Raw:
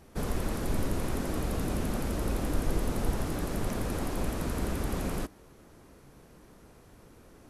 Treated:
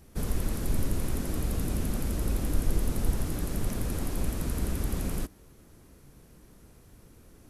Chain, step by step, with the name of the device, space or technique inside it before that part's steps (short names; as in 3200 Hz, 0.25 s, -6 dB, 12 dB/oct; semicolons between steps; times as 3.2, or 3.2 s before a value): smiley-face EQ (low shelf 150 Hz +5.5 dB; bell 830 Hz -4.5 dB 2.1 oct; high shelf 8500 Hz +8 dB); gain -1.5 dB